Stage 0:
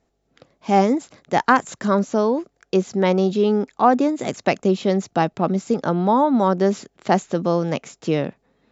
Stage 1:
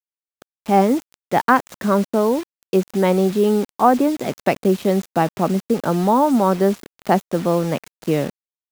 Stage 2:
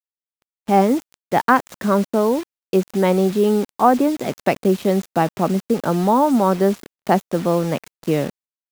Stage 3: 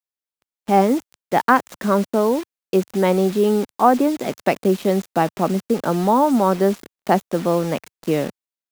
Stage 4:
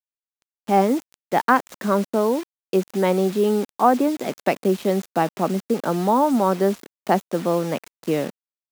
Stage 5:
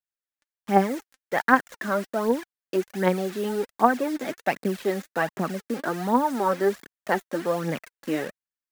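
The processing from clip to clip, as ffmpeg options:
-af "lowpass=f=2.7k:p=1,acrusher=bits=5:mix=0:aa=0.000001,volume=1.5dB"
-af "agate=range=-40dB:threshold=-45dB:ratio=16:detection=peak"
-af "equalizer=f=100:t=o:w=0.59:g=-14"
-af "highpass=130,acrusher=bits=7:mix=0:aa=0.000001,volume=-2dB"
-af "equalizer=f=1.7k:t=o:w=0.6:g=9.5,aphaser=in_gain=1:out_gain=1:delay=3.9:decay=0.58:speed=1.3:type=triangular,volume=-6.5dB"

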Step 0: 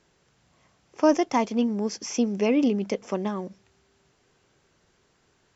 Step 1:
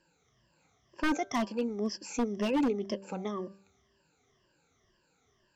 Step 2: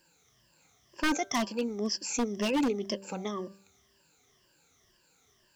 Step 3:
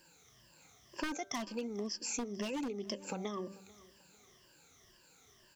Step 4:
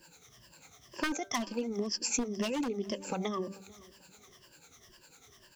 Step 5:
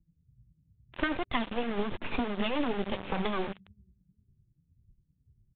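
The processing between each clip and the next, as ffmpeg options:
-af "afftfilt=real='re*pow(10,18/40*sin(2*PI*(1.3*log(max(b,1)*sr/1024/100)/log(2)-(-2)*(pts-256)/sr)))':imag='im*pow(10,18/40*sin(2*PI*(1.3*log(max(b,1)*sr/1024/100)/log(2)-(-2)*(pts-256)/sr)))':win_size=1024:overlap=0.75,bandreject=f=195.4:t=h:w=4,bandreject=f=390.8:t=h:w=4,bandreject=f=586.2:t=h:w=4,bandreject=f=781.6:t=h:w=4,bandreject=f=977:t=h:w=4,bandreject=f=1.1724k:t=h:w=4,bandreject=f=1.3678k:t=h:w=4,bandreject=f=1.5632k:t=h:w=4,aeval=exprs='0.224*(abs(mod(val(0)/0.224+3,4)-2)-1)':c=same,volume=-9dB"
-af "highshelf=f=2.9k:g=10.5,acrusher=bits=11:mix=0:aa=0.000001"
-af "acompressor=threshold=-38dB:ratio=16,aecho=1:1:442|884:0.0794|0.0254,volume=3dB"
-filter_complex "[0:a]acrossover=split=460[a][b];[a]aeval=exprs='val(0)*(1-0.7/2+0.7/2*cos(2*PI*10*n/s))':c=same[c];[b]aeval=exprs='val(0)*(1-0.7/2-0.7/2*cos(2*PI*10*n/s))':c=same[d];[c][d]amix=inputs=2:normalize=0,volume=8.5dB"
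-filter_complex "[0:a]acrossover=split=150[a][b];[b]acrusher=bits=4:dc=4:mix=0:aa=0.000001[c];[a][c]amix=inputs=2:normalize=0,aresample=8000,aresample=44100,volume=7dB" -ar 22050 -c:a libvorbis -b:a 64k

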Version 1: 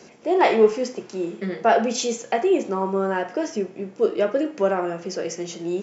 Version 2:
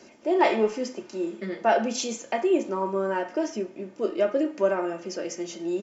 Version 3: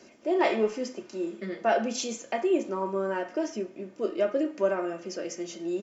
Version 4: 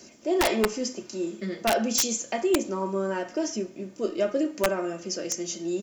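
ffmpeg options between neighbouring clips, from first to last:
-af "aecho=1:1:3.3:0.51,volume=-4.5dB"
-af "bandreject=f=880:w=12,volume=-2.5dB"
-af "bass=f=250:g=7,treble=f=4k:g=13,aeval=exprs='(mod(5.01*val(0)+1,2)-1)/5.01':c=same"

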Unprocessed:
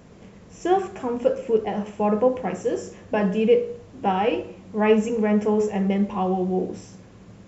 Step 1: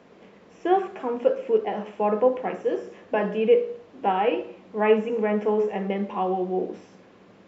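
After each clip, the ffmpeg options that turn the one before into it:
-filter_complex "[0:a]acrossover=split=3600[a][b];[b]acompressor=threshold=-52dB:ratio=4:attack=1:release=60[c];[a][c]amix=inputs=2:normalize=0,acrossover=split=230 4800:gain=0.1 1 0.112[d][e][f];[d][e][f]amix=inputs=3:normalize=0"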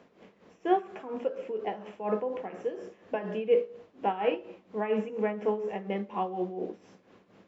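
-af "tremolo=f=4.2:d=0.72,volume=-3.5dB"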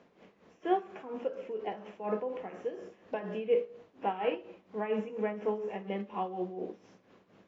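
-af "volume=-3.5dB" -ar 16000 -c:a aac -b:a 24k

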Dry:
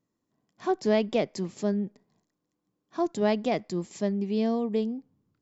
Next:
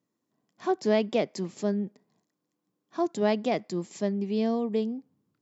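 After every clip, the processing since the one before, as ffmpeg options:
-af "highpass=140"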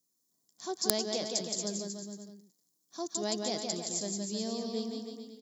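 -af "aecho=1:1:170|314.5|437.3|541.7|630.5:0.631|0.398|0.251|0.158|0.1,aeval=exprs='(mod(4.22*val(0)+1,2)-1)/4.22':c=same,aexciter=amount=14.1:drive=3:freq=3.9k,volume=-11dB"

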